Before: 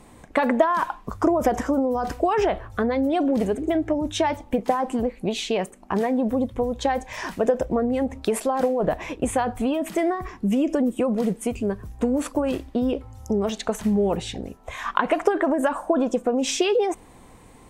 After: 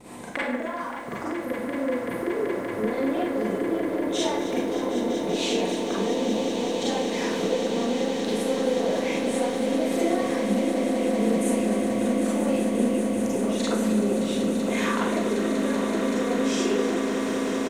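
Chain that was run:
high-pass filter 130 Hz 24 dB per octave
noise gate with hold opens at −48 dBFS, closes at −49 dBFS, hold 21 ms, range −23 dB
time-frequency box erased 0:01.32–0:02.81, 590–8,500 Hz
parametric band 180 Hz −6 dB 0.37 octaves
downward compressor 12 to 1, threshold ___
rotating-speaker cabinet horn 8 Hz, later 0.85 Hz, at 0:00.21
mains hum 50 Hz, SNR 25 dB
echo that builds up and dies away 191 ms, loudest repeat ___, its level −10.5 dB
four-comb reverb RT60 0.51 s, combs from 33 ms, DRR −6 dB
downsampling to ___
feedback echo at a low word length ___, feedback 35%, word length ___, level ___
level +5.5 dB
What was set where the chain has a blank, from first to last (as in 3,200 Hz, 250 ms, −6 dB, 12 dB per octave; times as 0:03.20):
−36 dBFS, 8, 32,000 Hz, 266 ms, 9 bits, −12.5 dB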